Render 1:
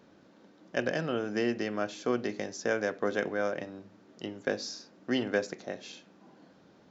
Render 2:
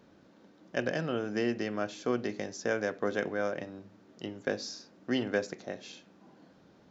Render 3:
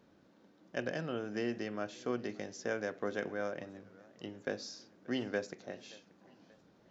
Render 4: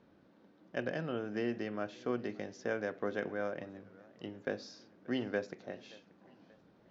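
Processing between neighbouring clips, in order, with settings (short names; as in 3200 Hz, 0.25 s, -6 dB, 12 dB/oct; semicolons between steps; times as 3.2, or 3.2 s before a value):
low shelf 94 Hz +7.5 dB; gain -1.5 dB
warbling echo 0.579 s, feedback 46%, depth 151 cents, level -23 dB; gain -5.5 dB
air absorption 140 m; gain +1 dB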